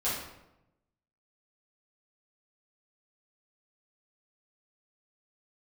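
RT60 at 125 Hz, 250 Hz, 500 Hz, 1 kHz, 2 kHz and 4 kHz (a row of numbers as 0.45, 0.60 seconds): 1.3, 1.1, 0.95, 0.85, 0.70, 0.60 seconds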